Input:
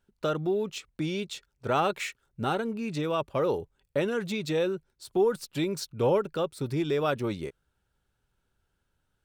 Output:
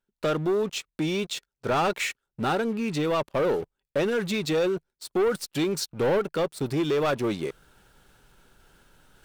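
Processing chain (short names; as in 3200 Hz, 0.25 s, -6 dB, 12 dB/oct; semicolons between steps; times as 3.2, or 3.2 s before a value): bell 74 Hz -12 dB 1.2 oct; sample leveller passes 3; reverse; upward compressor, threshold -27 dBFS; reverse; gain -5 dB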